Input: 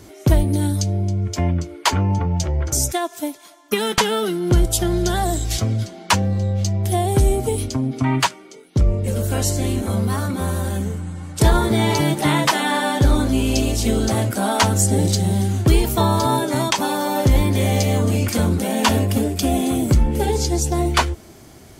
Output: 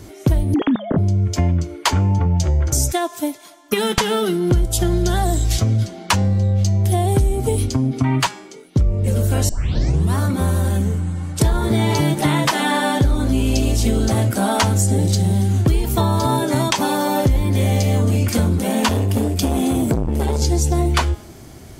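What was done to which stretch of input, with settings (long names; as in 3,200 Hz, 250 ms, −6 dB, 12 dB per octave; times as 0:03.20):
0:00.54–0:00.98: three sine waves on the formant tracks
0:09.49: tape start 0.66 s
0:18.61–0:20.42: saturating transformer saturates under 620 Hz
whole clip: low-shelf EQ 180 Hz +6 dB; hum removal 207.2 Hz, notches 40; downward compressor, threshold −15 dBFS; level +2 dB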